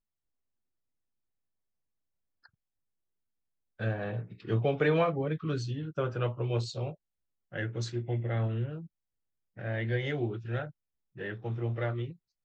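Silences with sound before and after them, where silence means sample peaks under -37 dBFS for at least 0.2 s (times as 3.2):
6.92–7.54
8.8–9.59
10.68–11.2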